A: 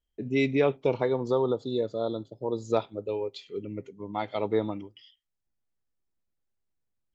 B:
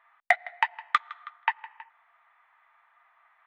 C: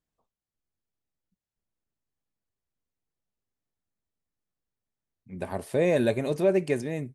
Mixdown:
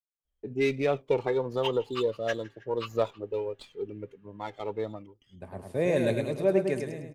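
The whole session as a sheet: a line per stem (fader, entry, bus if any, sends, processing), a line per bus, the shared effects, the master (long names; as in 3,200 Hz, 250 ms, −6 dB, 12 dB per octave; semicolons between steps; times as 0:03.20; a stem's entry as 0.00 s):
+2.0 dB, 0.25 s, no send, no echo send, flanger 1.5 Hz, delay 1.4 ms, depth 1.2 ms, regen +36%; windowed peak hold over 3 samples; automatic ducking −6 dB, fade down 1.55 s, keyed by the third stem
−6.5 dB, 1.35 s, no send, no echo send, partials spread apart or drawn together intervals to 120%
−3.5 dB, 0.00 s, no send, echo send −5.5 dB, multiband upward and downward expander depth 70%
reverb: not used
echo: repeating echo 105 ms, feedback 41%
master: one half of a high-frequency compander decoder only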